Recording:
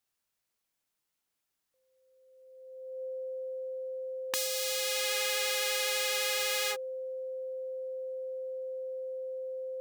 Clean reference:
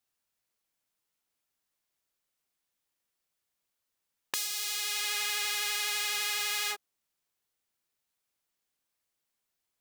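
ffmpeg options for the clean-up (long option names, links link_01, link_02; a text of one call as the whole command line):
ffmpeg -i in.wav -af "bandreject=frequency=520:width=30" out.wav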